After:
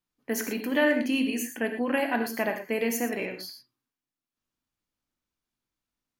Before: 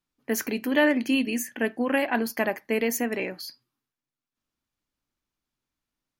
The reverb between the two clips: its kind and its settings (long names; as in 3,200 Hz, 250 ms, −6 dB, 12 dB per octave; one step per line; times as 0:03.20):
reverb whose tail is shaped and stops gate 140 ms flat, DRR 5.5 dB
level −3 dB